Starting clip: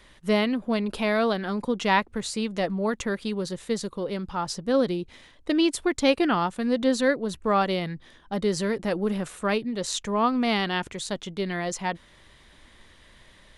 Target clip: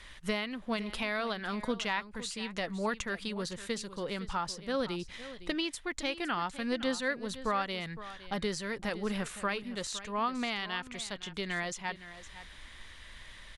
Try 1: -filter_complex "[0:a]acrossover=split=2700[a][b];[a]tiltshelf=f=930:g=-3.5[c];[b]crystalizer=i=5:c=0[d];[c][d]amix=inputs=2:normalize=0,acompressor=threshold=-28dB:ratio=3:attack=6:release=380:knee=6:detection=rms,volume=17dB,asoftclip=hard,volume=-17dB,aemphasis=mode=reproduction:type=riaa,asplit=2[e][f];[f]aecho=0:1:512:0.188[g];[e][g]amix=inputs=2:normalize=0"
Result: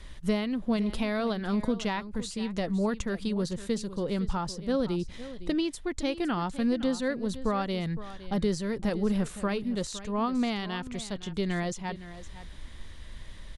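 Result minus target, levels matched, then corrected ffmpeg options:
1000 Hz band -4.0 dB
-filter_complex "[0:a]acrossover=split=2700[a][b];[a]tiltshelf=f=930:g=-14[c];[b]crystalizer=i=5:c=0[d];[c][d]amix=inputs=2:normalize=0,acompressor=threshold=-28dB:ratio=3:attack=6:release=380:knee=6:detection=rms,volume=17dB,asoftclip=hard,volume=-17dB,aemphasis=mode=reproduction:type=riaa,asplit=2[e][f];[f]aecho=0:1:512:0.188[g];[e][g]amix=inputs=2:normalize=0"

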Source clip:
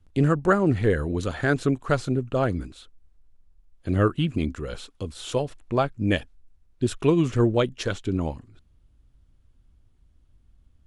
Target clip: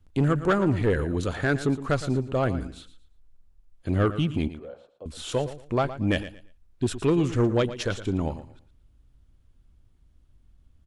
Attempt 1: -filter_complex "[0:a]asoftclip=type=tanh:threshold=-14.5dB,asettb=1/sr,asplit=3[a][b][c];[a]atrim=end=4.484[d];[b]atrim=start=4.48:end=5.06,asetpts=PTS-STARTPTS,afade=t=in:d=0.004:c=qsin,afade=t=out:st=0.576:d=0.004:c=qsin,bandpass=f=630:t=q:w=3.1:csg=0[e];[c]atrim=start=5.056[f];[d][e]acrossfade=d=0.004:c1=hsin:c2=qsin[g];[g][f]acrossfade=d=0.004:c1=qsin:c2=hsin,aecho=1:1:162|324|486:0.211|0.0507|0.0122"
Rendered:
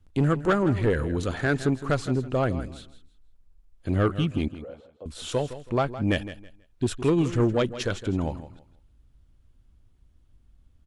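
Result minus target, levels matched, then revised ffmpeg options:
echo 47 ms late
-filter_complex "[0:a]asoftclip=type=tanh:threshold=-14.5dB,asettb=1/sr,asplit=3[a][b][c];[a]atrim=end=4.484[d];[b]atrim=start=4.48:end=5.06,asetpts=PTS-STARTPTS,afade=t=in:d=0.004:c=qsin,afade=t=out:st=0.576:d=0.004:c=qsin,bandpass=f=630:t=q:w=3.1:csg=0[e];[c]atrim=start=5.056[f];[d][e]acrossfade=d=0.004:c1=hsin:c2=qsin[g];[g][f]acrossfade=d=0.004:c1=qsin:c2=hsin,aecho=1:1:115|230|345:0.211|0.0507|0.0122"

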